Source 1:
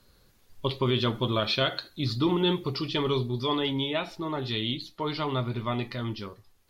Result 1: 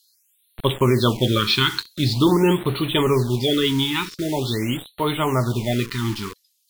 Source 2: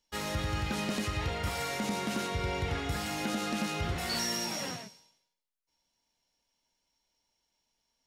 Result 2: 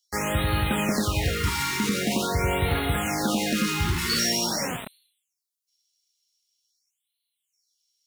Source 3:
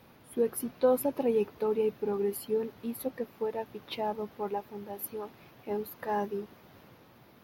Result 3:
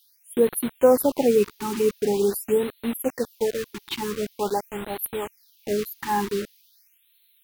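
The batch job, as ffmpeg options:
ffmpeg -i in.wav -filter_complex "[0:a]acrossover=split=3400[link_01][link_02];[link_01]acrusher=bits=6:mix=0:aa=0.000001[link_03];[link_03][link_02]amix=inputs=2:normalize=0,afftfilt=real='re*(1-between(b*sr/1024,550*pow(6300/550,0.5+0.5*sin(2*PI*0.45*pts/sr))/1.41,550*pow(6300/550,0.5+0.5*sin(2*PI*0.45*pts/sr))*1.41))':imag='im*(1-between(b*sr/1024,550*pow(6300/550,0.5+0.5*sin(2*PI*0.45*pts/sr))/1.41,550*pow(6300/550,0.5+0.5*sin(2*PI*0.45*pts/sr))*1.41))':win_size=1024:overlap=0.75,volume=8.5dB" out.wav

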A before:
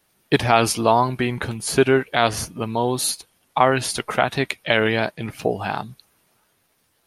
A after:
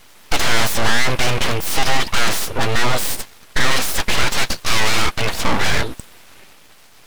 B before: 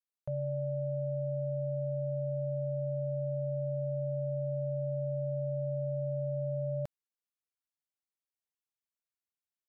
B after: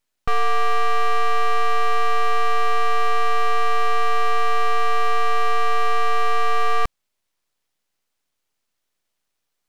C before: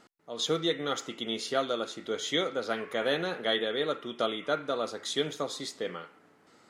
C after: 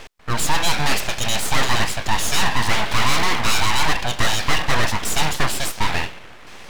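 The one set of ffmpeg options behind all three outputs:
ffmpeg -i in.wav -filter_complex "[0:a]asplit=2[link_01][link_02];[link_02]highpass=frequency=720:poles=1,volume=35dB,asoftclip=type=tanh:threshold=-1dB[link_03];[link_01][link_03]amix=inputs=2:normalize=0,lowpass=frequency=2300:poles=1,volume=-6dB,aeval=exprs='abs(val(0))':channel_layout=same,volume=-2dB" out.wav

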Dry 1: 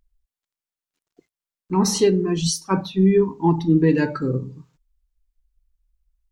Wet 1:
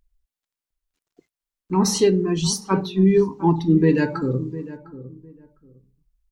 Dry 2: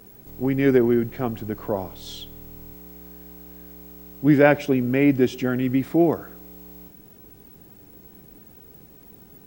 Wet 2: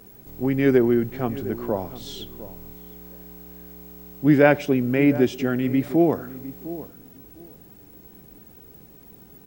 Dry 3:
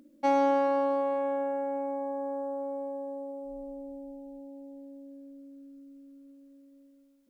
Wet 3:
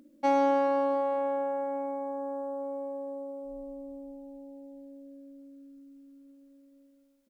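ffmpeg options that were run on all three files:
ffmpeg -i in.wav -filter_complex "[0:a]asplit=2[link_01][link_02];[link_02]adelay=705,lowpass=frequency=940:poles=1,volume=-14.5dB,asplit=2[link_03][link_04];[link_04]adelay=705,lowpass=frequency=940:poles=1,volume=0.21[link_05];[link_01][link_03][link_05]amix=inputs=3:normalize=0" out.wav

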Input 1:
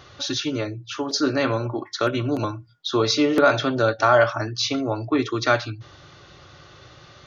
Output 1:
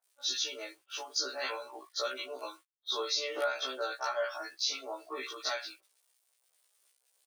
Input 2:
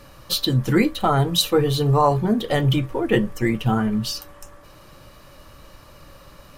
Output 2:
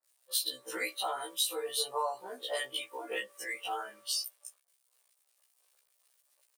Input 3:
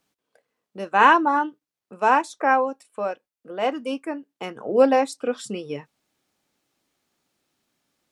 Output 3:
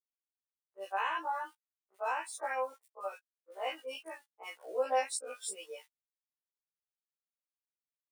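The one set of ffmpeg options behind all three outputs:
ffmpeg -i in.wav -filter_complex "[0:a]tiltshelf=frequency=820:gain=-5,aeval=exprs='val(0)*gte(abs(val(0)),0.0119)':channel_layout=same,equalizer=frequency=9100:width=5.3:gain=9.5,afftdn=noise_reduction=12:noise_floor=-33,crystalizer=i=1:c=0,highpass=frequency=440:width=0.5412,highpass=frequency=440:width=1.3066,acompressor=threshold=-17dB:ratio=20,acrossover=split=1400[link_01][link_02];[link_02]adelay=40[link_03];[link_01][link_03]amix=inputs=2:normalize=0,afftfilt=real='re*1.73*eq(mod(b,3),0)':imag='im*1.73*eq(mod(b,3),0)':win_size=2048:overlap=0.75,volume=-8dB" out.wav

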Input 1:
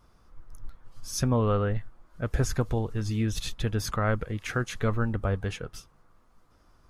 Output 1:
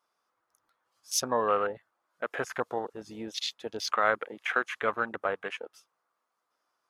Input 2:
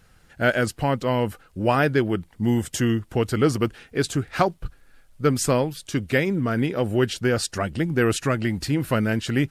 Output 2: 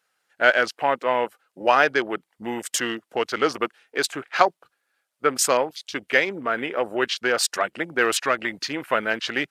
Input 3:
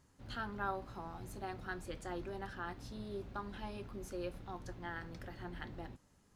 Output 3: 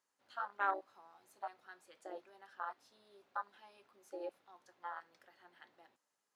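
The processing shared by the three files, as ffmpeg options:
ffmpeg -i in.wav -af "highpass=620,afwtdn=0.01,volume=5.5dB" out.wav

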